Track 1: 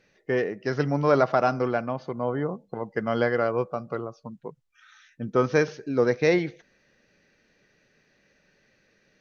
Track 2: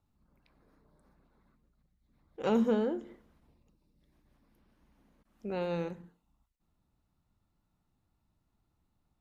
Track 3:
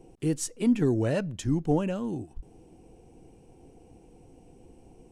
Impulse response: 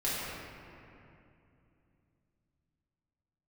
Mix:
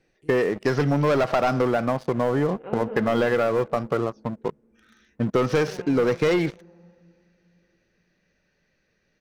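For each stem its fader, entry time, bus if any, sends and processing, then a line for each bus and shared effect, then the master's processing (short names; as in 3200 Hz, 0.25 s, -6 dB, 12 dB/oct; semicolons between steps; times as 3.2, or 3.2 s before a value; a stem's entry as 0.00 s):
-0.5 dB, 0.00 s, no send, sample leveller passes 3; compressor, threshold -18 dBFS, peak gain reduction 7.5 dB
-10.0 dB, 0.20 s, send -6 dB, LPF 2500 Hz 24 dB/oct
-16.5 dB, 0.00 s, no send, auto duck -11 dB, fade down 0.40 s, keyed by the first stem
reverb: on, RT60 2.7 s, pre-delay 3 ms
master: dry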